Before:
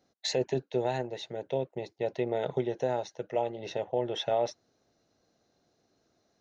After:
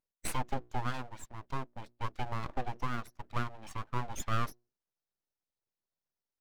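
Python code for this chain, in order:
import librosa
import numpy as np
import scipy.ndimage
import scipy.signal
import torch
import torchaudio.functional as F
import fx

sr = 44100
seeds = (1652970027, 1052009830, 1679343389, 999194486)

y = fx.bin_expand(x, sr, power=1.5)
y = fx.vibrato(y, sr, rate_hz=0.9, depth_cents=16.0)
y = fx.hum_notches(y, sr, base_hz=60, count=4)
y = fx.cheby_harmonics(y, sr, harmonics=(4,), levels_db=(-20,), full_scale_db=-18.0)
y = np.abs(y)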